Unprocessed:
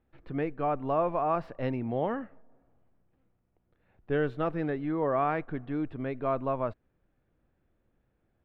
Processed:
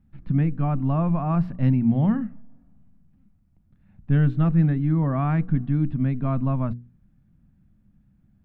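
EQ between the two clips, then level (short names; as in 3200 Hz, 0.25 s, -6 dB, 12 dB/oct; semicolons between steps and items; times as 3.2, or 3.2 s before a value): resonant low shelf 290 Hz +13.5 dB, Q 3; notches 60/120/180/240/300/360/420/480 Hz; 0.0 dB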